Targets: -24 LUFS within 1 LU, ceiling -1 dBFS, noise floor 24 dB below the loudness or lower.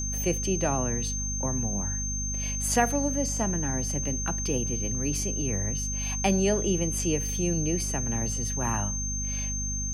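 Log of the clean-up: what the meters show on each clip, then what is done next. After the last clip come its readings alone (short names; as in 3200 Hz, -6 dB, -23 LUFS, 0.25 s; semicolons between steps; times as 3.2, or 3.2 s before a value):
hum 50 Hz; harmonics up to 250 Hz; hum level -30 dBFS; steady tone 6300 Hz; tone level -31 dBFS; loudness -27.5 LUFS; peak -11.0 dBFS; loudness target -24.0 LUFS
-> notches 50/100/150/200/250 Hz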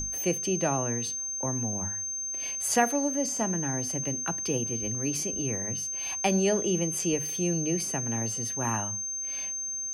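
hum none; steady tone 6300 Hz; tone level -31 dBFS
-> notch 6300 Hz, Q 30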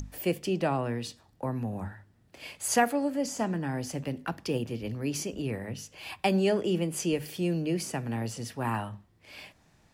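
steady tone none; loudness -31.0 LUFS; peak -12.5 dBFS; loudness target -24.0 LUFS
-> gain +7 dB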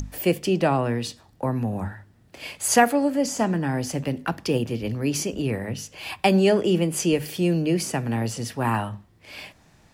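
loudness -24.0 LUFS; peak -5.5 dBFS; noise floor -57 dBFS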